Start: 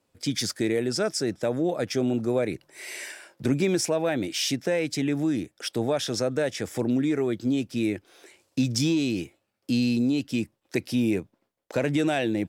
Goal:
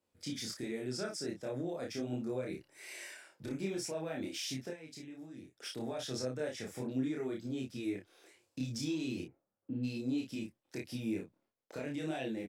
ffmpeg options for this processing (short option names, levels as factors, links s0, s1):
-filter_complex "[0:a]asplit=3[s0][s1][s2];[s0]afade=t=out:st=9.21:d=0.02[s3];[s1]lowpass=f=1400:w=0.5412,lowpass=f=1400:w=1.3066,afade=t=in:st=9.21:d=0.02,afade=t=out:st=9.83:d=0.02[s4];[s2]afade=t=in:st=9.83:d=0.02[s5];[s3][s4][s5]amix=inputs=3:normalize=0,alimiter=limit=0.112:level=0:latency=1:release=183,asettb=1/sr,asplit=3[s6][s7][s8];[s6]atrim=end=4.704[s9];[s7]atrim=start=4.7:end=5.54,asetpts=PTS-STARTPTS,afade=t=in:d=0.004:c=qsin,afade=t=out:st=0.836:d=0.004:c=qsin,acompressor=threshold=0.0158:ratio=6[s10];[s8]atrim=start=5.536[s11];[s9][s10]acrossfade=d=0.004:c1=hsin:c2=qsin[s12];[s12][s11]acrossfade=d=0.004:c1=qsin:c2=hsin,flanger=delay=22.5:depth=5.1:speed=1.3,asplit=2[s13][s14];[s14]adelay=31,volume=0.668[s15];[s13][s15]amix=inputs=2:normalize=0,volume=0.376"